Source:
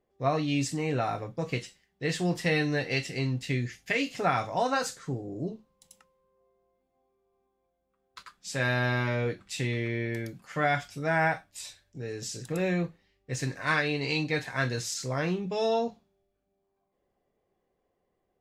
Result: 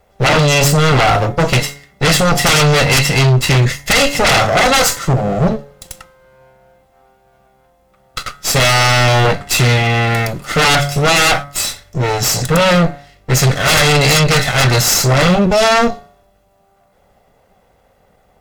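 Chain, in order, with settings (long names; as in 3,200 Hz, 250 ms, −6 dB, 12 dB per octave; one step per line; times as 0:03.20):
lower of the sound and its delayed copy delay 1.5 ms
hum removal 142.2 Hz, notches 15
sine wavefolder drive 15 dB, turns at −14 dBFS
level +6.5 dB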